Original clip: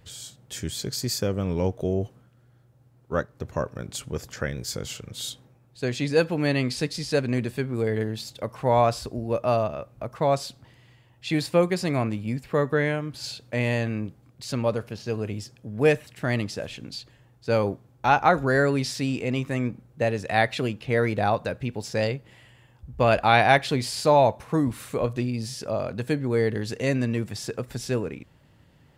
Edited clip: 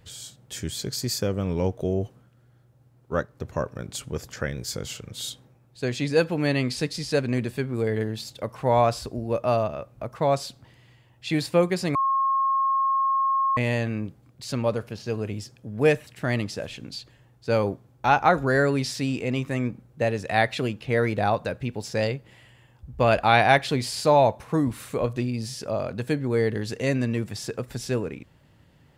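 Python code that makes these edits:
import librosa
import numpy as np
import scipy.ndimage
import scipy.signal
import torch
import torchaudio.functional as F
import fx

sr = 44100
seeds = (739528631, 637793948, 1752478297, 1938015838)

y = fx.edit(x, sr, fx.bleep(start_s=11.95, length_s=1.62, hz=1080.0, db=-19.5), tone=tone)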